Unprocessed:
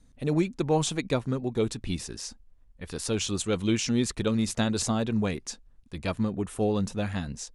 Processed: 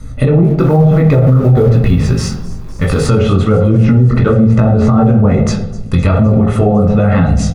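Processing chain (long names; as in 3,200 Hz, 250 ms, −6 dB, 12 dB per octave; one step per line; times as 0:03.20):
treble cut that deepens with the level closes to 670 Hz, closed at −21 dBFS
high-shelf EQ 3,600 Hz +10.5 dB
comb filter 1.5 ms, depth 71%
dynamic equaliser 5,300 Hz, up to −5 dB, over −46 dBFS, Q 1
downward compressor 2 to 1, threshold −38 dBFS, peak gain reduction 10.5 dB
chorus effect 1.1 Hz, delay 18 ms, depth 5.6 ms
0:00.44–0:03.08: log-companded quantiser 6 bits
delay with a high-pass on its return 255 ms, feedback 78%, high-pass 5,500 Hz, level −16.5 dB
convolution reverb RT60 1.0 s, pre-delay 3 ms, DRR 3.5 dB
boost into a limiter +24 dB
level −1 dB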